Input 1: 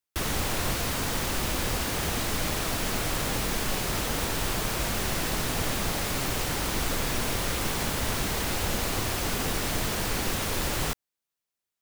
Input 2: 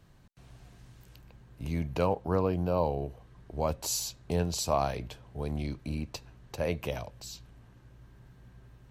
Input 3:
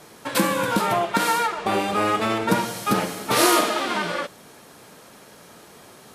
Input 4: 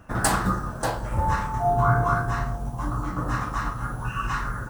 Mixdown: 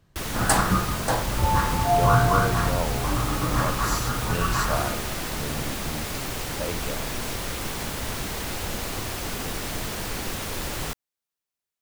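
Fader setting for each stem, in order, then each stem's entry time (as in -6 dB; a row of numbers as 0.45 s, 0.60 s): -2.0 dB, -1.5 dB, -18.0 dB, +1.5 dB; 0.00 s, 0.00 s, 1.35 s, 0.25 s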